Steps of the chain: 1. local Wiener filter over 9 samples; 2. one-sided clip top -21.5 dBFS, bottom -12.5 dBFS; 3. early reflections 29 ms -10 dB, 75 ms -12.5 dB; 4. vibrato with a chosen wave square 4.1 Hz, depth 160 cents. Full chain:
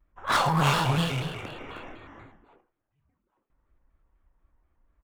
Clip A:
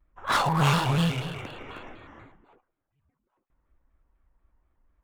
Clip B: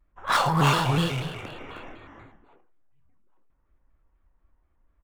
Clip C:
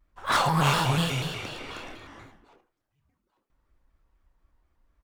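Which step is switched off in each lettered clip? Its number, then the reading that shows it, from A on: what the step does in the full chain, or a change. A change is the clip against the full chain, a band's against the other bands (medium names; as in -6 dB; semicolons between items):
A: 3, momentary loudness spread change +1 LU; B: 2, distortion -11 dB; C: 1, 8 kHz band +2.5 dB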